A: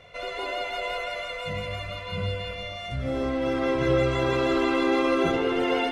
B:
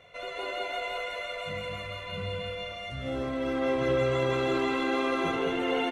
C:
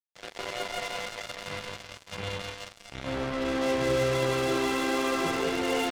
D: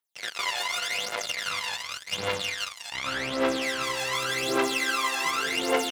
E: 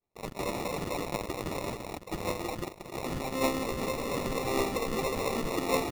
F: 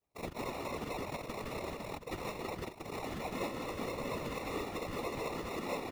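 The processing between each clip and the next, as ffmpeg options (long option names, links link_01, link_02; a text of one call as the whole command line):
ffmpeg -i in.wav -af "lowshelf=frequency=100:gain=-8,bandreject=frequency=5000:width=5.5,aecho=1:1:209:0.562,volume=-4dB" out.wav
ffmpeg -i in.wav -af "acrusher=bits=4:mix=0:aa=0.5" out.wav
ffmpeg -i in.wav -af "highpass=frequency=1200:poles=1,acompressor=threshold=-35dB:ratio=6,aphaser=in_gain=1:out_gain=1:delay=1.2:decay=0.75:speed=0.87:type=triangular,volume=8dB" out.wav
ffmpeg -i in.wav -af "acrusher=samples=28:mix=1:aa=0.000001,volume=-3.5dB" out.wav
ffmpeg -i in.wav -filter_complex "[0:a]acrossover=split=940|4100[link_01][link_02][link_03];[link_01]acompressor=threshold=-39dB:ratio=4[link_04];[link_02]acompressor=threshold=-44dB:ratio=4[link_05];[link_03]acompressor=threshold=-54dB:ratio=4[link_06];[link_04][link_05][link_06]amix=inputs=3:normalize=0,afftfilt=real='hypot(re,im)*cos(2*PI*random(0))':imag='hypot(re,im)*sin(2*PI*random(1))':win_size=512:overlap=0.75,volume=6.5dB" out.wav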